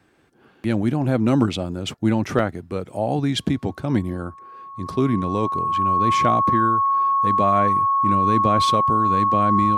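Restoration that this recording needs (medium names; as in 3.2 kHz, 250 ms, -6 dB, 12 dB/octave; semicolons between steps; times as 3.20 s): band-stop 1.1 kHz, Q 30; interpolate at 2.39 s, 3.5 ms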